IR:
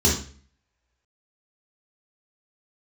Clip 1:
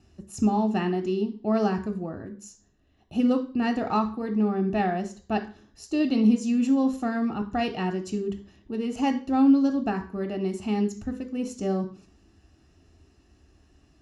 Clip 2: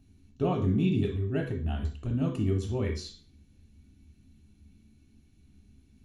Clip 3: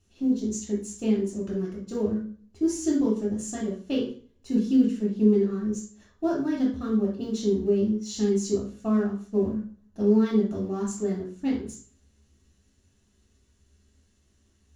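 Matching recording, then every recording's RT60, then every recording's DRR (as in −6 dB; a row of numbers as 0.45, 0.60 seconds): 3; 0.45, 0.45, 0.45 seconds; 6.0, 0.5, −5.0 decibels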